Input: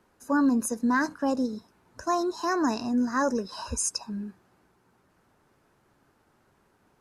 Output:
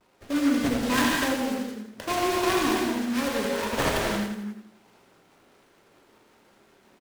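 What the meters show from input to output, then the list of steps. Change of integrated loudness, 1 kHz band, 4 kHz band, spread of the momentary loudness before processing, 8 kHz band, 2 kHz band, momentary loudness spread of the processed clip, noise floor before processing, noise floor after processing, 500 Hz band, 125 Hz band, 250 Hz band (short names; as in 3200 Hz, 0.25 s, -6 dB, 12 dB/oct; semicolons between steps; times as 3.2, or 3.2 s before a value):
+1.5 dB, +1.0 dB, +9.0 dB, 12 LU, -1.5 dB, +5.0 dB, 11 LU, -67 dBFS, -61 dBFS, +3.5 dB, +7.0 dB, +0.5 dB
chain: HPF 260 Hz 12 dB/oct; dynamic EQ 690 Hz, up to -5 dB, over -38 dBFS, Q 0.77; in parallel at 0 dB: compressor, threshold -37 dBFS, peak gain reduction 13 dB; on the sum: sample-rate reducer 3500 Hz, jitter 0%; vibrato 0.54 Hz 35 cents; rotary speaker horn 0.75 Hz, later 5.5 Hz, at 4.77; on a send: feedback echo 83 ms, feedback 41%, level -6.5 dB; on the sum: non-linear reverb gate 0.31 s flat, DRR -2.5 dB; noise-modulated delay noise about 1300 Hz, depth 0.068 ms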